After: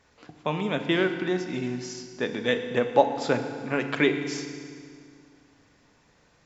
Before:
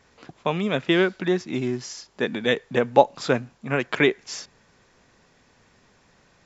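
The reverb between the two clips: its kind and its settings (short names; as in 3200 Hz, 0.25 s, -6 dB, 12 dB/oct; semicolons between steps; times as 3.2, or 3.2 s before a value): FDN reverb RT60 2.1 s, low-frequency decay 1.25×, high-frequency decay 0.9×, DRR 6 dB; gain -4 dB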